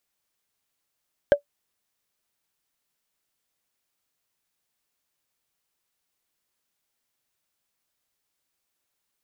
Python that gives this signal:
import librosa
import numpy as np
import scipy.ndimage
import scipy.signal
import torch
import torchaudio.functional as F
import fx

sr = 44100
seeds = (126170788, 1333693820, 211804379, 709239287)

y = fx.strike_wood(sr, length_s=0.45, level_db=-7, body='bar', hz=575.0, decay_s=0.1, tilt_db=10, modes=5)